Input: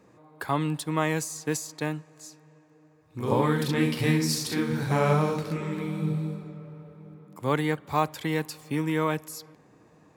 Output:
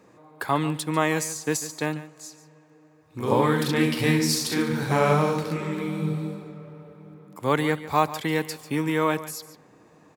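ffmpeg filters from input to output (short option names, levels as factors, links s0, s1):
-af "lowshelf=f=170:g=-6.5,aecho=1:1:144:0.178,volume=1.58"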